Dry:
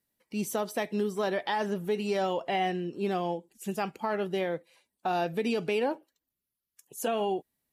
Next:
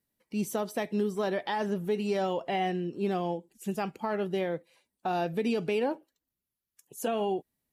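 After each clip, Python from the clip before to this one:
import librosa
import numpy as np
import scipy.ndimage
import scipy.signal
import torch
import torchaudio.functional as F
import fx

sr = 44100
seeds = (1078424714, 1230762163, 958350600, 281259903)

y = fx.low_shelf(x, sr, hz=410.0, db=5.0)
y = F.gain(torch.from_numpy(y), -2.5).numpy()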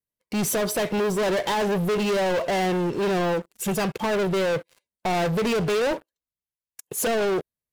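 y = x + 0.46 * np.pad(x, (int(1.9 * sr / 1000.0), 0))[:len(x)]
y = fx.leveller(y, sr, passes=5)
y = F.gain(torch.from_numpy(y), -1.5).numpy()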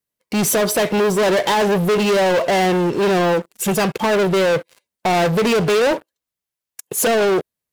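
y = fx.low_shelf(x, sr, hz=89.0, db=-8.5)
y = F.gain(torch.from_numpy(y), 7.5).numpy()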